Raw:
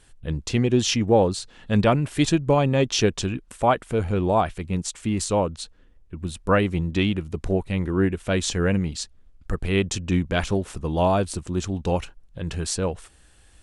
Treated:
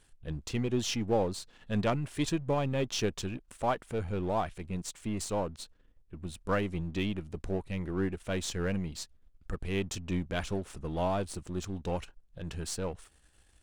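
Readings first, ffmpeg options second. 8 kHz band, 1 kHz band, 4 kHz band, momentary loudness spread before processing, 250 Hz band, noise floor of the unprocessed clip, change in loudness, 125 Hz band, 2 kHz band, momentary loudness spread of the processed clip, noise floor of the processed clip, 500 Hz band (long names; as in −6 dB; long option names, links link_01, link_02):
−10.0 dB, −10.0 dB, −10.0 dB, 12 LU, −10.5 dB, −54 dBFS, −10.5 dB, −10.5 dB, −10.0 dB, 11 LU, −64 dBFS, −10.5 dB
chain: -af "aeval=exprs='if(lt(val(0),0),0.447*val(0),val(0))':channel_layout=same,aeval=exprs='0.501*(cos(1*acos(clip(val(0)/0.501,-1,1)))-cos(1*PI/2))+0.0501*(cos(4*acos(clip(val(0)/0.501,-1,1)))-cos(4*PI/2))':channel_layout=same,volume=-6.5dB"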